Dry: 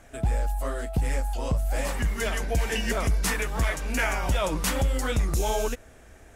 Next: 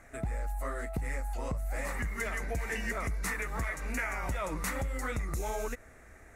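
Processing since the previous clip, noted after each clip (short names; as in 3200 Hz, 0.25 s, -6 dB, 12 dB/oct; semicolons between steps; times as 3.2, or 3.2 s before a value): thirty-one-band EQ 1250 Hz +6 dB, 2000 Hz +10 dB, 3150 Hz -11 dB, 5000 Hz -5 dB; compressor, threshold -26 dBFS, peak gain reduction 8 dB; gain -4.5 dB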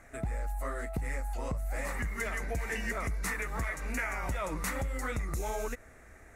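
nothing audible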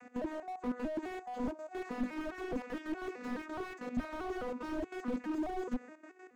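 arpeggiated vocoder major triad, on B3, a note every 0.21 s; step gate "x.xxx.x.x.xxxx" 189 bpm -12 dB; slew limiter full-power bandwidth 4.6 Hz; gain +5.5 dB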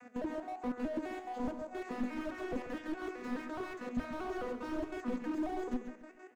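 flange 1.4 Hz, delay 6.7 ms, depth 8.1 ms, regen +79%; on a send: feedback echo 0.138 s, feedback 26%, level -10 dB; on the sum: gain +4 dB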